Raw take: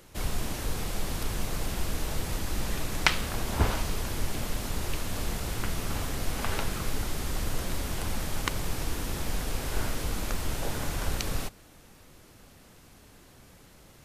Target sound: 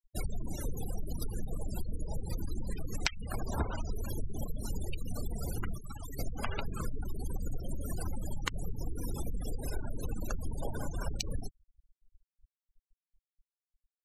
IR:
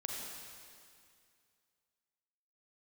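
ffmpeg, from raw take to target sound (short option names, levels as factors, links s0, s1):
-filter_complex "[0:a]bandreject=f=50:t=h:w=6,bandreject=f=100:t=h:w=6,bandreject=f=150:t=h:w=6,bandreject=f=200:t=h:w=6,bandreject=f=250:t=h:w=6,bandreject=f=300:t=h:w=6,bandreject=f=350:t=h:w=6,asplit=2[s0][s1];[1:a]atrim=start_sample=2205,afade=t=out:st=0.33:d=0.01,atrim=end_sample=14994[s2];[s1][s2]afir=irnorm=-1:irlink=0,volume=0.0891[s3];[s0][s3]amix=inputs=2:normalize=0,asettb=1/sr,asplit=3[s4][s5][s6];[s4]atrim=end=5.774[s7];[s5]atrim=start=5.77:end=6.19,asetpts=PTS-STARTPTS,afade=t=in:d=0.004:c=qsin,afade=t=out:st=0.416:d=0.004:c=qsin,acrossover=split=210|1000[s8][s9][s10];[s8]acompressor=threshold=0.00891:ratio=4[s11];[s9]acompressor=threshold=0.00447:ratio=4[s12];[s10]acompressor=threshold=0.01:ratio=4[s13];[s11][s12][s13]amix=inputs=3:normalize=0[s14];[s6]atrim=start=6.186[s15];[s7][s14]acrossfade=d=0.004:c1=hsin:c2=qsin[s16];[s16][s15]acrossfade=d=0.004:c1=qsin:c2=hsin,highshelf=f=3800:g=9.5,acompressor=threshold=0.0398:ratio=12,afftfilt=real='re*gte(hypot(re,im),0.0282)':imag='im*gte(hypot(re,im),0.0282)':win_size=1024:overlap=0.75,volume=1.12"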